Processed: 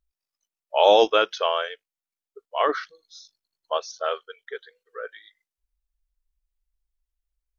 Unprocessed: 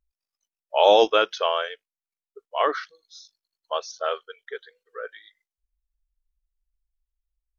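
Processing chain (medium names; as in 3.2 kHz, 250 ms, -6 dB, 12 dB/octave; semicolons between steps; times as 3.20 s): 2.69–3.78 s: bass shelf 480 Hz +6.5 dB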